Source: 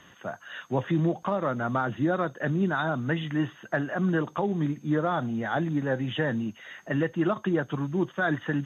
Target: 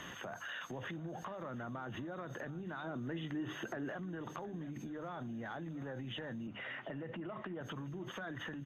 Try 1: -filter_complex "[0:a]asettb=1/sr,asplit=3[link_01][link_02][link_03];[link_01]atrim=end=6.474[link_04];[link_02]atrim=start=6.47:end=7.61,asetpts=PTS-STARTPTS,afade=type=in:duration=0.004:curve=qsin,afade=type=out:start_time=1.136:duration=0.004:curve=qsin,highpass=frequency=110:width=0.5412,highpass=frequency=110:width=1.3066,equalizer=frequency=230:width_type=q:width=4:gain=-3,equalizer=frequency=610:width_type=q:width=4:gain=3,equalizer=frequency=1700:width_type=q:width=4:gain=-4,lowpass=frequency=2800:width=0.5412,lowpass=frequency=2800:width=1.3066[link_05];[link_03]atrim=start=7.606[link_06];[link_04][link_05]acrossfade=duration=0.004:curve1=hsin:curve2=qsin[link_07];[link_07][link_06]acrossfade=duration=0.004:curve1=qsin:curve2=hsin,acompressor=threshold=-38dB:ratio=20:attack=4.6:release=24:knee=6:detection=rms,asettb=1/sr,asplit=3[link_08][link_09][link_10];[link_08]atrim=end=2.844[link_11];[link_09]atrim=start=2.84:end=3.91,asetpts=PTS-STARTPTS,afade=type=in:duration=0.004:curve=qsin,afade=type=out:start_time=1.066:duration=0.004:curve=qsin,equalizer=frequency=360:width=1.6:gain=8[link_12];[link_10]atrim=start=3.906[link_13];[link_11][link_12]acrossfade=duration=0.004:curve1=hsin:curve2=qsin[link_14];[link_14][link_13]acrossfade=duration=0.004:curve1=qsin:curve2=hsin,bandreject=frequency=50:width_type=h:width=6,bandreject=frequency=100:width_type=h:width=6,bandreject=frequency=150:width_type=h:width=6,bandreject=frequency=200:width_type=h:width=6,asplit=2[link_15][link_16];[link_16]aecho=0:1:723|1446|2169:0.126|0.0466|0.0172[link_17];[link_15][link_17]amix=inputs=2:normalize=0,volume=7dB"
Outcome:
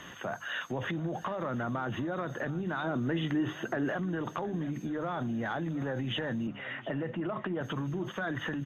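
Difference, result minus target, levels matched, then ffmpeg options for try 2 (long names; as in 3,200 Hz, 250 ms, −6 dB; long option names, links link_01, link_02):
downward compressor: peak gain reduction −10 dB
-filter_complex "[0:a]asettb=1/sr,asplit=3[link_01][link_02][link_03];[link_01]atrim=end=6.474[link_04];[link_02]atrim=start=6.47:end=7.61,asetpts=PTS-STARTPTS,afade=type=in:duration=0.004:curve=qsin,afade=type=out:start_time=1.136:duration=0.004:curve=qsin,highpass=frequency=110:width=0.5412,highpass=frequency=110:width=1.3066,equalizer=frequency=230:width_type=q:width=4:gain=-3,equalizer=frequency=610:width_type=q:width=4:gain=3,equalizer=frequency=1700:width_type=q:width=4:gain=-4,lowpass=frequency=2800:width=0.5412,lowpass=frequency=2800:width=1.3066[link_05];[link_03]atrim=start=7.606[link_06];[link_04][link_05]acrossfade=duration=0.004:curve1=hsin:curve2=qsin[link_07];[link_07][link_06]acrossfade=duration=0.004:curve1=qsin:curve2=hsin,acompressor=threshold=-48.5dB:ratio=20:attack=4.6:release=24:knee=6:detection=rms,asettb=1/sr,asplit=3[link_08][link_09][link_10];[link_08]atrim=end=2.844[link_11];[link_09]atrim=start=2.84:end=3.91,asetpts=PTS-STARTPTS,afade=type=in:duration=0.004:curve=qsin,afade=type=out:start_time=1.066:duration=0.004:curve=qsin,equalizer=frequency=360:width=1.6:gain=8[link_12];[link_10]atrim=start=3.906[link_13];[link_11][link_12]acrossfade=duration=0.004:curve1=hsin:curve2=qsin[link_14];[link_14][link_13]acrossfade=duration=0.004:curve1=qsin:curve2=hsin,bandreject=frequency=50:width_type=h:width=6,bandreject=frequency=100:width_type=h:width=6,bandreject=frequency=150:width_type=h:width=6,bandreject=frequency=200:width_type=h:width=6,asplit=2[link_15][link_16];[link_16]aecho=0:1:723|1446|2169:0.126|0.0466|0.0172[link_17];[link_15][link_17]amix=inputs=2:normalize=0,volume=7dB"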